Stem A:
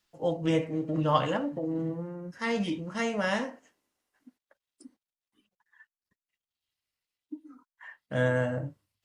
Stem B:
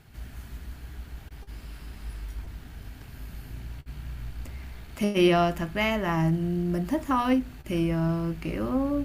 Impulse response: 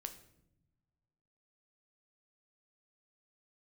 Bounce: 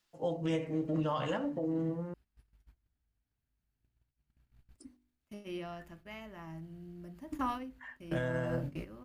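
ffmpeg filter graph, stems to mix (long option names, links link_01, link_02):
-filter_complex "[0:a]bandreject=frequency=49.23:width_type=h:width=4,bandreject=frequency=98.46:width_type=h:width=4,bandreject=frequency=147.69:width_type=h:width=4,bandreject=frequency=196.92:width_type=h:width=4,bandreject=frequency=246.15:width_type=h:width=4,bandreject=frequency=295.38:width_type=h:width=4,bandreject=frequency=344.61:width_type=h:width=4,bandreject=frequency=393.84:width_type=h:width=4,bandreject=frequency=443.07:width_type=h:width=4,volume=-2dB,asplit=3[link_01][link_02][link_03];[link_01]atrim=end=2.14,asetpts=PTS-STARTPTS,afade=type=out:start_time=2.136:duration=0.004:curve=hsin[link_04];[link_02]atrim=start=2.14:end=4.69,asetpts=PTS-STARTPTS,volume=0[link_05];[link_03]atrim=start=4.69,asetpts=PTS-STARTPTS,afade=type=in:duration=0.004:curve=hsin[link_06];[link_04][link_05][link_06]concat=n=3:v=0:a=1,asplit=2[link_07][link_08];[1:a]agate=range=-22dB:threshold=-33dB:ratio=16:detection=peak,adelay=300,volume=-9.5dB,asplit=2[link_09][link_10];[link_10]volume=-22dB[link_11];[link_08]apad=whole_len=412302[link_12];[link_09][link_12]sidechaingate=range=-14dB:threshold=-53dB:ratio=16:detection=peak[link_13];[2:a]atrim=start_sample=2205[link_14];[link_11][link_14]afir=irnorm=-1:irlink=0[link_15];[link_07][link_13][link_15]amix=inputs=3:normalize=0,alimiter=limit=-24dB:level=0:latency=1:release=119"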